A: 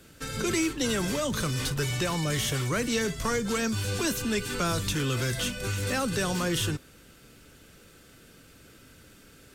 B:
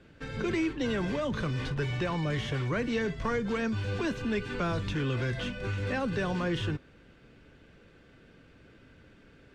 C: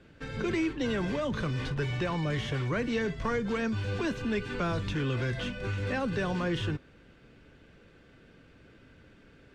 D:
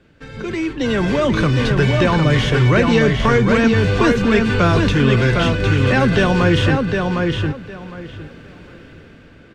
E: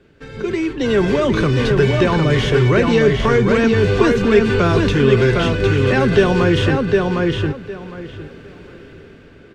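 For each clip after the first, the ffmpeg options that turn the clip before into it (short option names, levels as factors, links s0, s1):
-af "lowpass=2500,bandreject=f=1300:w=12,volume=0.841"
-af anull
-filter_complex "[0:a]dynaudnorm=f=190:g=9:m=3.98,asplit=2[s0][s1];[s1]adelay=758,lowpass=f=4600:p=1,volume=0.668,asplit=2[s2][s3];[s3]adelay=758,lowpass=f=4600:p=1,volume=0.2,asplit=2[s4][s5];[s5]adelay=758,lowpass=f=4600:p=1,volume=0.2[s6];[s0][s2][s4][s6]amix=inputs=4:normalize=0,volume=1.41"
-filter_complex "[0:a]asplit=2[s0][s1];[s1]alimiter=limit=0.355:level=0:latency=1,volume=0.794[s2];[s0][s2]amix=inputs=2:normalize=0,equalizer=f=400:t=o:w=0.28:g=9.5,volume=0.531"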